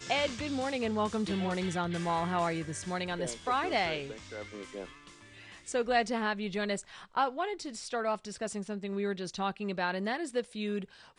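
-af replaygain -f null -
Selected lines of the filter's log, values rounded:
track_gain = +13.4 dB
track_peak = 0.121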